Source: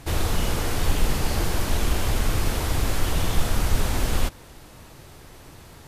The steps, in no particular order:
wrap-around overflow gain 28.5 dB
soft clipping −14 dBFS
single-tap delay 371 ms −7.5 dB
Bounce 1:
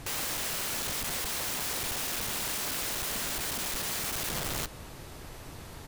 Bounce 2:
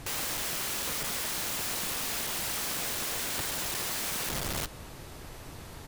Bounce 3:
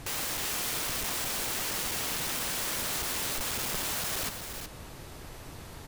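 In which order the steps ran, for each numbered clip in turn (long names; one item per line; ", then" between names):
single-tap delay, then soft clipping, then wrap-around overflow
soft clipping, then single-tap delay, then wrap-around overflow
soft clipping, then wrap-around overflow, then single-tap delay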